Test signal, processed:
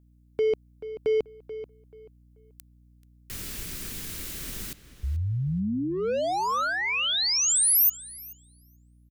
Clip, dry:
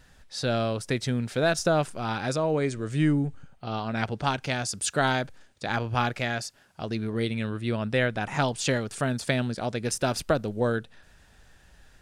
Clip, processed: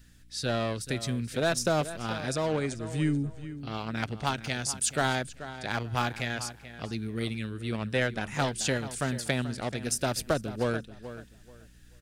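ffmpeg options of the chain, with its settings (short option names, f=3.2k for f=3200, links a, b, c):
-filter_complex "[0:a]highshelf=f=7.9k:g=9.5,acrossover=split=470|1300[a][b][c];[b]acrusher=bits=4:mix=0:aa=0.5[d];[a][d][c]amix=inputs=3:normalize=0,aeval=exprs='val(0)+0.002*(sin(2*PI*60*n/s)+sin(2*PI*2*60*n/s)/2+sin(2*PI*3*60*n/s)/3+sin(2*PI*4*60*n/s)/4+sin(2*PI*5*60*n/s)/5)':c=same,asplit=2[e][f];[f]adelay=434,lowpass=f=3.8k:p=1,volume=-13dB,asplit=2[g][h];[h]adelay=434,lowpass=f=3.8k:p=1,volume=0.24,asplit=2[i][j];[j]adelay=434,lowpass=f=3.8k:p=1,volume=0.24[k];[e][g][i][k]amix=inputs=4:normalize=0,volume=-3.5dB"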